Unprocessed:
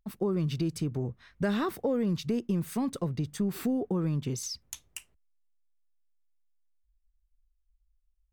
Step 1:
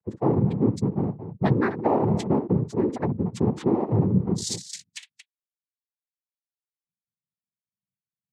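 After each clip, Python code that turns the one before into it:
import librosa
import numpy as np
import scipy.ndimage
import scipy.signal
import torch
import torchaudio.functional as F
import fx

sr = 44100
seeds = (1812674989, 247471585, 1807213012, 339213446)

y = fx.echo_multitap(x, sr, ms=(60, 227), db=(-11.0, -11.0))
y = fx.spec_gate(y, sr, threshold_db=-15, keep='strong')
y = fx.noise_vocoder(y, sr, seeds[0], bands=6)
y = y * librosa.db_to_amplitude(7.0)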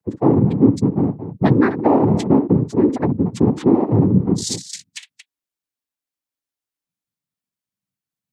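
y = fx.peak_eq(x, sr, hz=280.0, db=8.0, octaves=0.36)
y = y * librosa.db_to_amplitude(5.5)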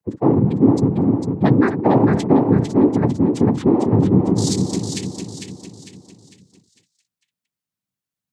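y = fx.echo_feedback(x, sr, ms=451, feedback_pct=42, wet_db=-5)
y = y * librosa.db_to_amplitude(-1.0)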